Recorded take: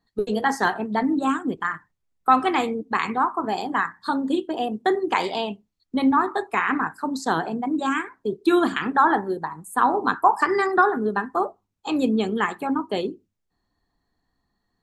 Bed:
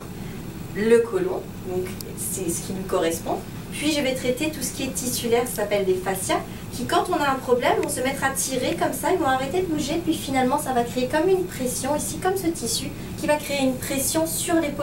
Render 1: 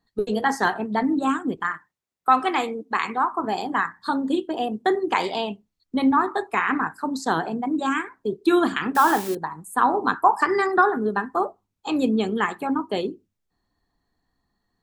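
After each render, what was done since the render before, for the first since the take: 1.72–3.32 HPF 340 Hz 6 dB/oct; 8.95–9.35 switching spikes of -20.5 dBFS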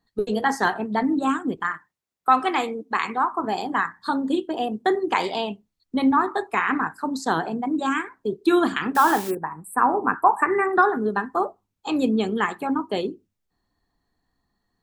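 9.3–10.76 spectral delete 2800–7500 Hz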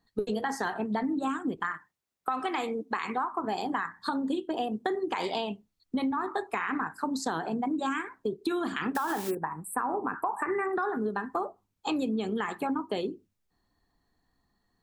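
limiter -13 dBFS, peak gain reduction 7.5 dB; compressor, threshold -27 dBFS, peak gain reduction 10.5 dB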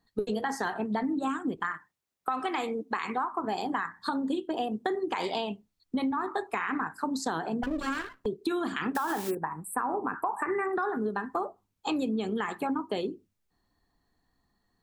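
7.63–8.26 minimum comb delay 0.67 ms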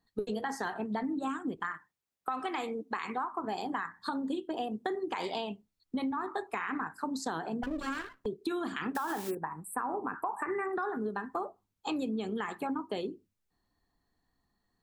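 gain -4 dB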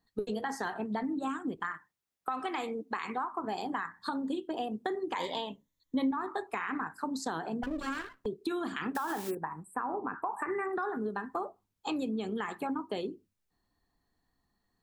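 5.15–6.11 ripple EQ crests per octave 1.1, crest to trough 10 dB; 9.63–10.32 air absorption 82 m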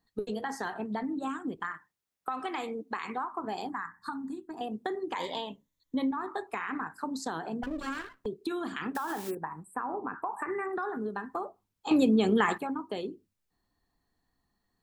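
3.69–4.61 fixed phaser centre 1300 Hz, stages 4; 11.91–12.58 gain +10.5 dB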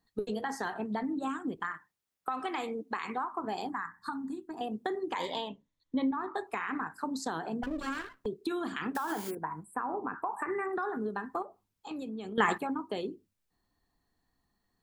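5.48–6.35 air absorption 97 m; 9.11–9.73 ripple EQ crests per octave 1.8, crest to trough 7 dB; 11.42–12.38 compressor 2.5:1, threshold -45 dBFS

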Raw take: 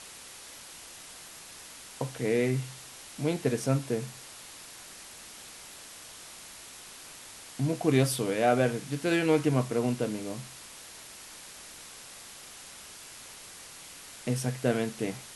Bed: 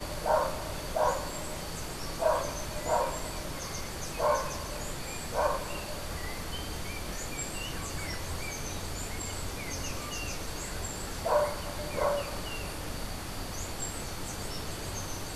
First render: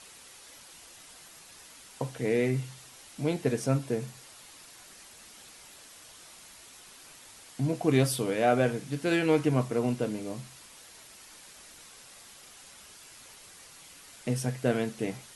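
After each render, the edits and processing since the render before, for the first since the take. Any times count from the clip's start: denoiser 6 dB, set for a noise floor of -48 dBFS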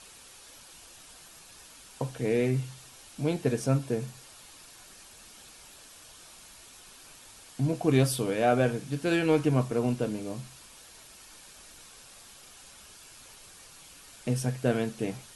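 low shelf 65 Hz +9.5 dB; notch 2000 Hz, Q 12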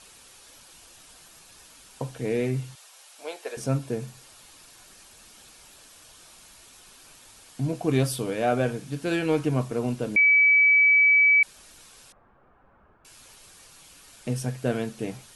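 2.75–3.57 HPF 520 Hz 24 dB/oct; 10.16–11.43 bleep 2290 Hz -14.5 dBFS; 12.12–13.05 LPF 1400 Hz 24 dB/oct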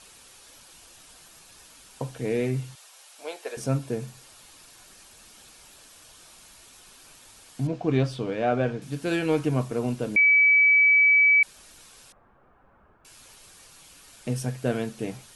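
7.67–8.82 air absorption 140 m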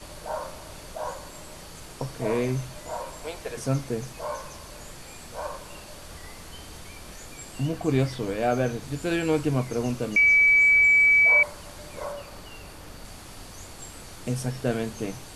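add bed -6 dB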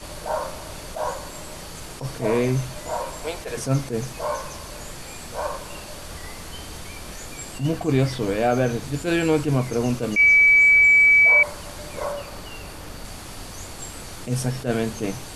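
in parallel at 0 dB: limiter -19.5 dBFS, peak gain reduction 8.5 dB; on the sum: attack slew limiter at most 210 dB/s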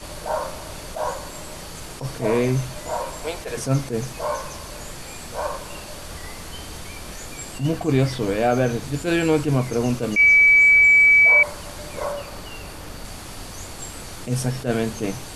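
gain +1 dB

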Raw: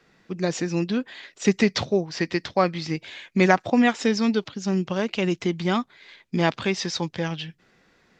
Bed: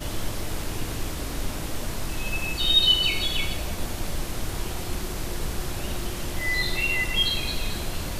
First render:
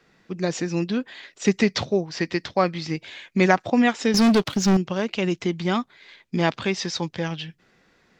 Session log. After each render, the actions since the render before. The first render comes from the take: 4.14–4.77 sample leveller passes 3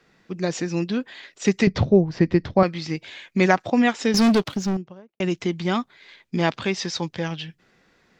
1.67–2.63 tilt -4 dB/oct; 4.25–5.2 studio fade out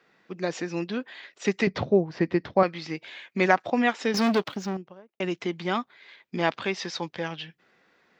HPF 450 Hz 6 dB/oct; bell 9100 Hz -10.5 dB 1.8 oct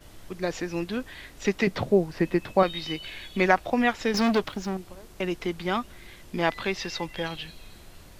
add bed -18.5 dB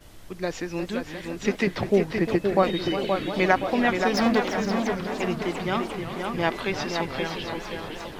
tape echo 0.523 s, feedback 50%, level -4 dB, low-pass 3100 Hz; warbling echo 0.347 s, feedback 78%, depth 203 cents, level -11.5 dB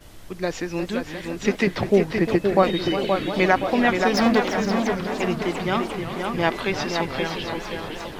gain +3 dB; limiter -3 dBFS, peak gain reduction 2 dB

